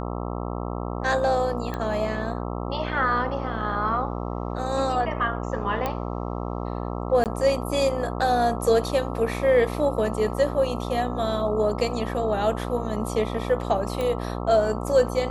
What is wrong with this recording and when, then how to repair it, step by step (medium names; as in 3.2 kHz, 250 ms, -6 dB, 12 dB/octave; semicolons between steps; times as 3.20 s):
buzz 60 Hz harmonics 22 -30 dBFS
1.74 s: pop -17 dBFS
5.86 s: pop -13 dBFS
7.24–7.26 s: dropout 18 ms
14.01 s: pop -16 dBFS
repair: de-click; de-hum 60 Hz, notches 22; interpolate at 7.24 s, 18 ms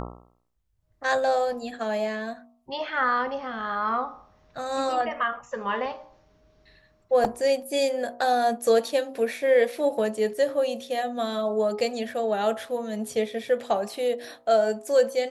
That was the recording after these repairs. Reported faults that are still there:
nothing left